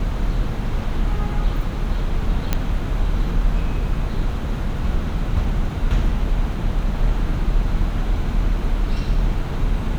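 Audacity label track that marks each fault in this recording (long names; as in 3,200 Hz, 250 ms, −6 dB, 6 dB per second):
2.530000	2.530000	click −5 dBFS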